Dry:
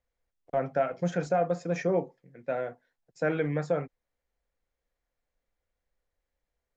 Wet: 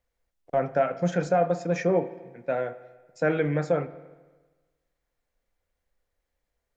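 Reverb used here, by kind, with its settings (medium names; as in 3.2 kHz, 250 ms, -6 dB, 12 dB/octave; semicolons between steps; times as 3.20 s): spring tank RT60 1.3 s, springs 39/48 ms, chirp 50 ms, DRR 14 dB; trim +3.5 dB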